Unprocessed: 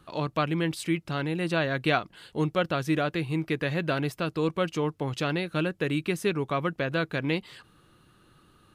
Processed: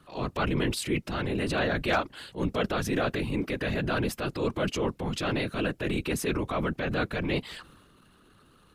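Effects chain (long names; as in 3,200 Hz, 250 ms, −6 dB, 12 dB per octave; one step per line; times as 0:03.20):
hard clipping −14 dBFS, distortion −35 dB
random phases in short frames
transient designer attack −6 dB, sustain +6 dB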